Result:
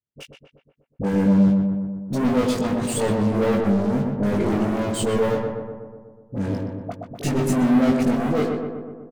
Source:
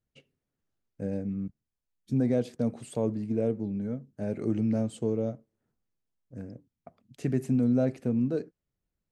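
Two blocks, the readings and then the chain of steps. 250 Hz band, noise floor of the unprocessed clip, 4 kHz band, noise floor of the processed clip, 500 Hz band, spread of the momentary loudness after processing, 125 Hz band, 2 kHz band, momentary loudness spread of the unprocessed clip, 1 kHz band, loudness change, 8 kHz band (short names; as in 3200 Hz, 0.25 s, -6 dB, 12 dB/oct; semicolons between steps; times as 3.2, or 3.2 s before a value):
+9.5 dB, under -85 dBFS, n/a, -64 dBFS, +9.0 dB, 14 LU, +7.5 dB, +18.0 dB, 16 LU, +19.0 dB, +8.5 dB, +18.0 dB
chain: HPF 91 Hz 12 dB/oct; sample leveller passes 5; limiter -21 dBFS, peak gain reduction 4.5 dB; doubler 20 ms -4 dB; dispersion highs, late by 47 ms, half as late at 760 Hz; on a send: darkening echo 0.123 s, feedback 66%, low-pass 1800 Hz, level -3.5 dB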